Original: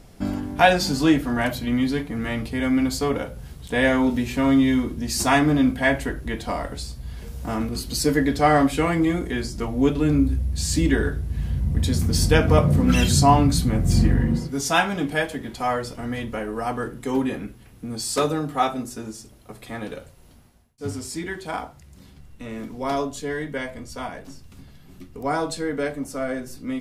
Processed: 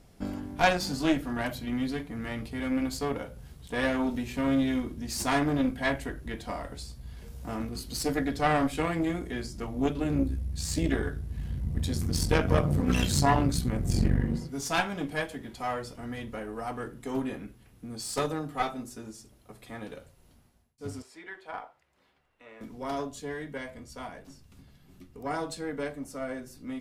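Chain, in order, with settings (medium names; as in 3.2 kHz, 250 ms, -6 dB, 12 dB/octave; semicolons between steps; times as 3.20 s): 21.02–22.61 s: three-band isolator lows -23 dB, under 440 Hz, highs -16 dB, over 3.2 kHz; Chebyshev shaper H 4 -12 dB, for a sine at -1.5 dBFS; trim -8.5 dB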